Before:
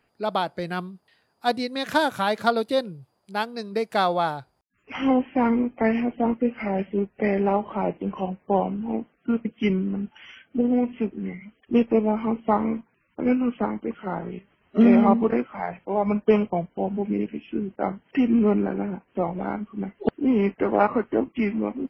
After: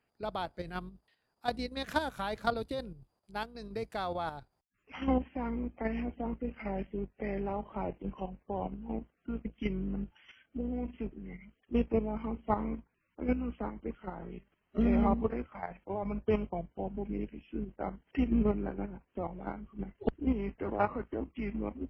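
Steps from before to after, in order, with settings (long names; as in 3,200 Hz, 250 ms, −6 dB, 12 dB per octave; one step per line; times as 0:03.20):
sub-octave generator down 2 octaves, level −5 dB
output level in coarse steps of 9 dB
level −7.5 dB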